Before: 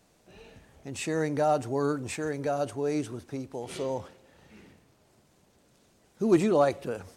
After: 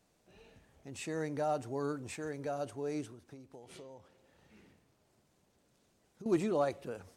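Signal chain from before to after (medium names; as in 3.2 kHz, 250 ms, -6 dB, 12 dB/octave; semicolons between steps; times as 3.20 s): 3.05–6.26 s: compression 8:1, threshold -40 dBFS, peak gain reduction 15.5 dB; trim -8.5 dB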